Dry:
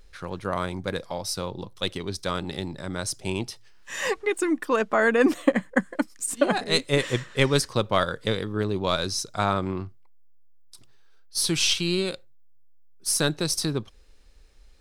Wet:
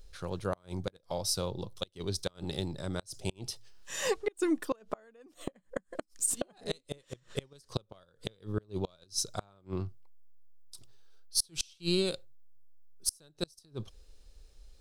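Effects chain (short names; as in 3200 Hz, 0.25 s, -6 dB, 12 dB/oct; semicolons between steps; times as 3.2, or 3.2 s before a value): flipped gate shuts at -14 dBFS, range -33 dB; ten-band EQ 250 Hz -6 dB, 1000 Hz -5 dB, 2000 Hz -9 dB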